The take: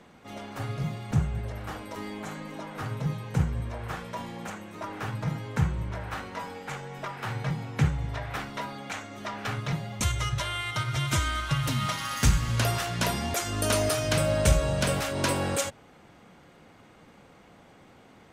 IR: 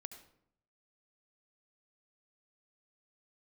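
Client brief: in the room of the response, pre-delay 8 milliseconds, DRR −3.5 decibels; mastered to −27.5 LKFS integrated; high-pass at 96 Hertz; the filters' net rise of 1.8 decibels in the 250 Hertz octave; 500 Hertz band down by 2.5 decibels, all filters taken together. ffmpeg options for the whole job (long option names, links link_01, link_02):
-filter_complex "[0:a]highpass=96,equalizer=frequency=250:width_type=o:gain=4,equalizer=frequency=500:width_type=o:gain=-4,asplit=2[link_01][link_02];[1:a]atrim=start_sample=2205,adelay=8[link_03];[link_02][link_03]afir=irnorm=-1:irlink=0,volume=8dB[link_04];[link_01][link_04]amix=inputs=2:normalize=0,volume=-2.5dB"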